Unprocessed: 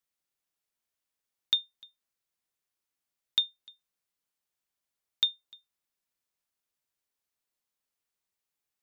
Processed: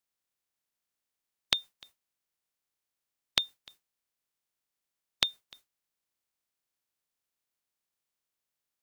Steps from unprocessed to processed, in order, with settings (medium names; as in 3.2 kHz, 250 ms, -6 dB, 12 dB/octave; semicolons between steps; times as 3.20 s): spectral peaks clipped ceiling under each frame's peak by 28 dB